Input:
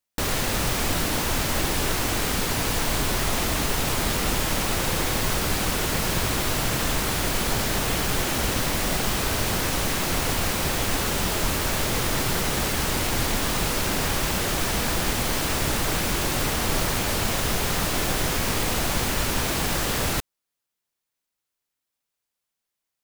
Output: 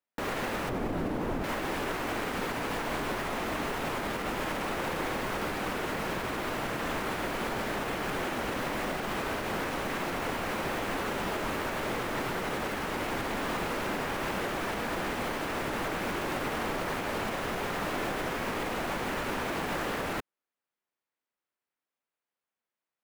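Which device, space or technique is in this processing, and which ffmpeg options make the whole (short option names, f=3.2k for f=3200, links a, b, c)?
DJ mixer with the lows and highs turned down: -filter_complex "[0:a]asettb=1/sr,asplit=3[a][b][c];[a]atrim=end=0.694[d];[b]atrim=start=0.69:end=1.44,asetpts=PTS-STARTPTS,afade=t=in:d=0.004:c=qsin,afade=t=out:st=0.746:d=0.004:c=qsin,tiltshelf=f=800:g=8[e];[c]atrim=start=1.436[f];[d][e]acrossfade=d=0.004:c1=hsin:c2=qsin[g];[g][f]acrossfade=d=0.004:c1=qsin:c2=hsin,acrossover=split=190 2600:gain=0.224 1 0.178[h][i][j];[h][i][j]amix=inputs=3:normalize=0,alimiter=limit=-22dB:level=0:latency=1:release=93,volume=-1dB"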